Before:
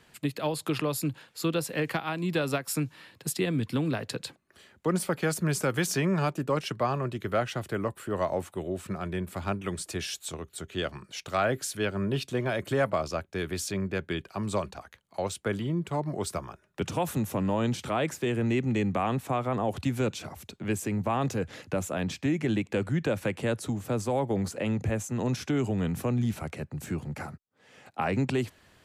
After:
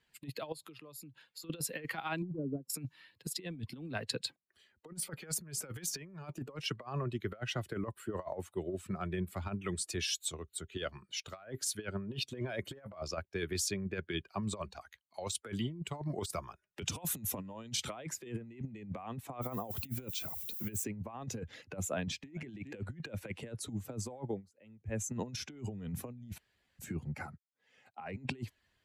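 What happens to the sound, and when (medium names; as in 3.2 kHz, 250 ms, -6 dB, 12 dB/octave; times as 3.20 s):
0.52–1.50 s: compression 12:1, threshold -40 dBFS
2.22–2.70 s: Butterworth band-pass 230 Hz, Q 0.86
14.74–17.96 s: treble shelf 2.3 kHz +6 dB
19.41–20.83 s: added noise violet -43 dBFS
21.89–22.31 s: echo throw 410 ms, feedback 35%, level -16.5 dB
24.24–25.02 s: dip -19.5 dB, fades 0.18 s
26.38–26.79 s: room tone
whole clip: expander on every frequency bin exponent 1.5; bass shelf 73 Hz -8.5 dB; compressor with a negative ratio -37 dBFS, ratio -0.5; trim -1 dB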